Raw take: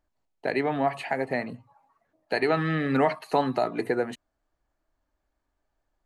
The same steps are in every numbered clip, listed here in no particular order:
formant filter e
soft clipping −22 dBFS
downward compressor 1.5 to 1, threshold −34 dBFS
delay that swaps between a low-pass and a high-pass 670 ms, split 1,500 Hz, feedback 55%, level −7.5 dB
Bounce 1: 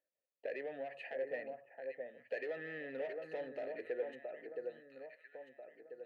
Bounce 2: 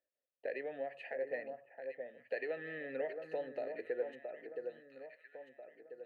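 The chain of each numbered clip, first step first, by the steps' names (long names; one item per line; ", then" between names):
delay that swaps between a low-pass and a high-pass, then soft clipping, then downward compressor, then formant filter
delay that swaps between a low-pass and a high-pass, then downward compressor, then formant filter, then soft clipping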